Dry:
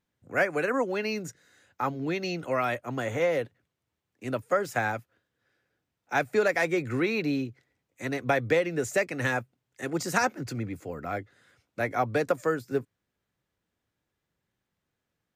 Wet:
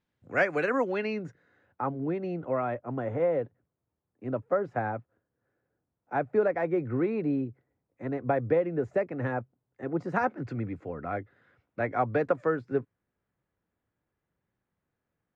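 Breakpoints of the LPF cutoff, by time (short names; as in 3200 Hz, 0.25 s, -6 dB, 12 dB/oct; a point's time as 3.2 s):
0.77 s 4500 Hz
1.2 s 1800 Hz
1.99 s 1000 Hz
9.99 s 1000 Hz
10.45 s 1800 Hz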